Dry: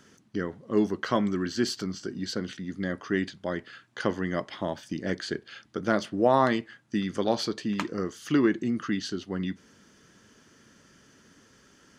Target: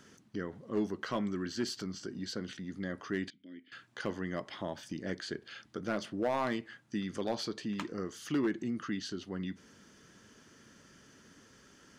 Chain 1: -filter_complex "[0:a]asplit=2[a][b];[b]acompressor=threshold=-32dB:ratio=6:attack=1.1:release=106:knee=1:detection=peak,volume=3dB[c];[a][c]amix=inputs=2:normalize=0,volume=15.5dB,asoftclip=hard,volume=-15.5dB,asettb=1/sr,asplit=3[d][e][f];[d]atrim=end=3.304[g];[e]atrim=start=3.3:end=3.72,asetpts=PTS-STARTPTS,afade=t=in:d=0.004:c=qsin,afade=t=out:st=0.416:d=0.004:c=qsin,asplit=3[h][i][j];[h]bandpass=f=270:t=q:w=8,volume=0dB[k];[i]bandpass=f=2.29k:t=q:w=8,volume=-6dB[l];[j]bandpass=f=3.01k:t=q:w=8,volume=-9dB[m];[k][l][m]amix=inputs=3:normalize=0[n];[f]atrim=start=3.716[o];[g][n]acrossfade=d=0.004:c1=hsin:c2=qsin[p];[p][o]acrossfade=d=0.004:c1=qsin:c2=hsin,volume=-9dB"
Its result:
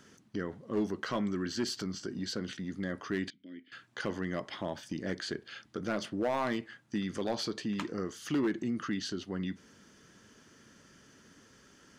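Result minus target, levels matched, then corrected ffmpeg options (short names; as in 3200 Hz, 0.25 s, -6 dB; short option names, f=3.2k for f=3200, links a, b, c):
compressor: peak gain reduction -8.5 dB
-filter_complex "[0:a]asplit=2[a][b];[b]acompressor=threshold=-42dB:ratio=6:attack=1.1:release=106:knee=1:detection=peak,volume=3dB[c];[a][c]amix=inputs=2:normalize=0,volume=15.5dB,asoftclip=hard,volume=-15.5dB,asettb=1/sr,asplit=3[d][e][f];[d]atrim=end=3.304[g];[e]atrim=start=3.3:end=3.72,asetpts=PTS-STARTPTS,afade=t=in:d=0.004:c=qsin,afade=t=out:st=0.416:d=0.004:c=qsin,asplit=3[h][i][j];[h]bandpass=f=270:t=q:w=8,volume=0dB[k];[i]bandpass=f=2.29k:t=q:w=8,volume=-6dB[l];[j]bandpass=f=3.01k:t=q:w=8,volume=-9dB[m];[k][l][m]amix=inputs=3:normalize=0[n];[f]atrim=start=3.716[o];[g][n]acrossfade=d=0.004:c1=hsin:c2=qsin[p];[p][o]acrossfade=d=0.004:c1=qsin:c2=hsin,volume=-9dB"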